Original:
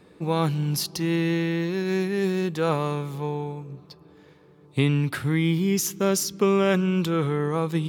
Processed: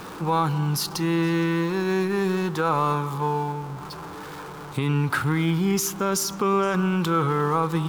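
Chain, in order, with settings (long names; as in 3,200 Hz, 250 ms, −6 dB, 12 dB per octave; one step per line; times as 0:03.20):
converter with a step at zero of −35.5 dBFS
brickwall limiter −15 dBFS, peak gain reduction 7.5 dB
flat-topped bell 1,100 Hz +9.5 dB 1.1 octaves
echo through a band-pass that steps 117 ms, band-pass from 360 Hz, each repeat 1.4 octaves, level −12 dB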